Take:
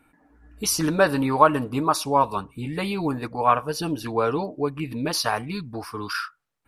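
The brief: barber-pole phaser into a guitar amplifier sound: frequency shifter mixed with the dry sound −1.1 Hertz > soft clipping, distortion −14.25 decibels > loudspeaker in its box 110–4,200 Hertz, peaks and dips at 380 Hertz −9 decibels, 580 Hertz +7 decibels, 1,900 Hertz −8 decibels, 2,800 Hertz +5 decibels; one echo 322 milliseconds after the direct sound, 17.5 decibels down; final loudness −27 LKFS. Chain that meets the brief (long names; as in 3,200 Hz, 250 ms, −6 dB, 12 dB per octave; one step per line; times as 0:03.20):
single-tap delay 322 ms −17.5 dB
frequency shifter mixed with the dry sound −1.1 Hz
soft clipping −12.5 dBFS
loudspeaker in its box 110–4,200 Hz, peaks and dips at 380 Hz −9 dB, 580 Hz +7 dB, 1,900 Hz −8 dB, 2,800 Hz +5 dB
level +0.5 dB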